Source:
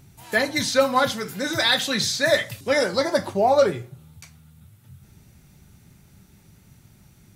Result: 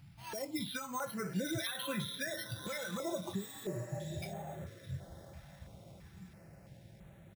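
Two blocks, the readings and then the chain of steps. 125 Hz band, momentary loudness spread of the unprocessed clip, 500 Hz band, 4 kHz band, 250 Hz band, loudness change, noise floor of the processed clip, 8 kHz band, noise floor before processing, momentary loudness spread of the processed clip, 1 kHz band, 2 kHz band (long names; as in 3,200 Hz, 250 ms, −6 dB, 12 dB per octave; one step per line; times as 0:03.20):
−6.0 dB, 6 LU, −20.5 dB, −18.5 dB, −11.0 dB, −18.5 dB, −57 dBFS, −14.5 dB, −54 dBFS, 18 LU, −19.5 dB, −18.5 dB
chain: downward compressor 4 to 1, threshold −36 dBFS, peak gain reduction 19 dB
high-shelf EQ 3,000 Hz +10 dB
on a send: feedback delay with all-pass diffusion 959 ms, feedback 58%, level −9.5 dB
on the sum: bad sample-rate conversion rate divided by 6×, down filtered, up hold
comb filter 6 ms, depth 32%
brickwall limiter −29 dBFS, peak gain reduction 8 dB
high-pass filter 62 Hz
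healed spectral selection 0:03.41–0:04.19, 490–7,900 Hz before
noise reduction from a noise print of the clip's start 10 dB
low-shelf EQ 120 Hz +8 dB
notch on a step sequencer 3 Hz 410–5,000 Hz
level +2 dB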